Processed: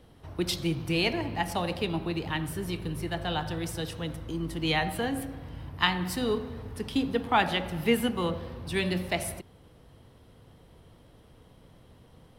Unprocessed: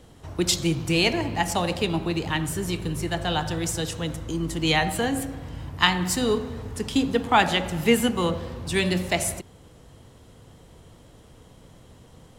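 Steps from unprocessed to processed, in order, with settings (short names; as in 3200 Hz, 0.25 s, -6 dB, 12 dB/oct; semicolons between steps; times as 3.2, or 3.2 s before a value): bell 7100 Hz -13 dB 0.5 oct; gain -5 dB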